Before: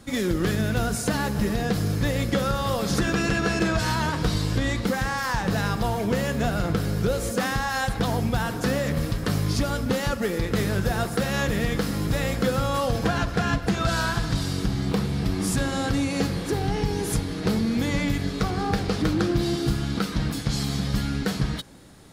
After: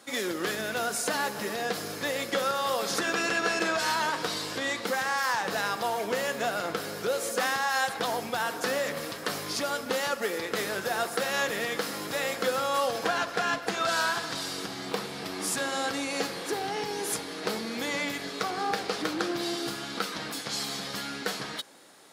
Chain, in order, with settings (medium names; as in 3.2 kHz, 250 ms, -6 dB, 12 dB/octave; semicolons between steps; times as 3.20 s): high-pass 480 Hz 12 dB/octave